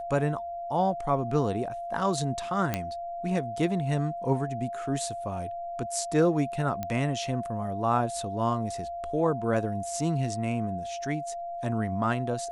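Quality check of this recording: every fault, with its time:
tone 690 Hz -33 dBFS
2.74 pop -12 dBFS
6.83 pop -18 dBFS

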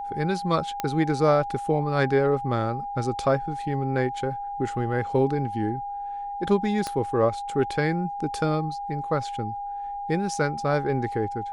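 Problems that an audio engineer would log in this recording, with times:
tone 810 Hz -30 dBFS
0.8 pop -12 dBFS
6.87 pop -15 dBFS

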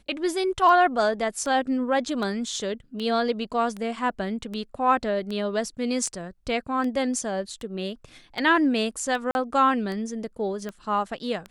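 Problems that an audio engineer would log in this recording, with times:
tick 78 rpm -21 dBFS
9.31–9.35 gap 41 ms

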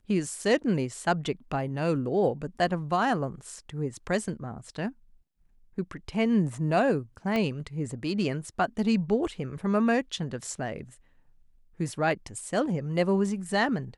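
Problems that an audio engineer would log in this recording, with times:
7.36 pop -16 dBFS

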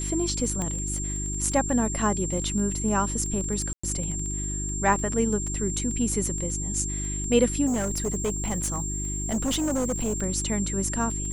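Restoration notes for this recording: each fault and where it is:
crackle 12/s -31 dBFS
hum 50 Hz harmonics 7 -32 dBFS
tone 7400 Hz -31 dBFS
0.62 pop -17 dBFS
3.73–3.83 gap 0.105 s
7.66–10.22 clipped -22.5 dBFS

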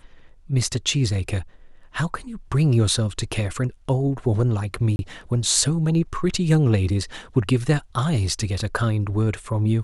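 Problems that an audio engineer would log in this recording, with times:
4.96–4.99 gap 31 ms

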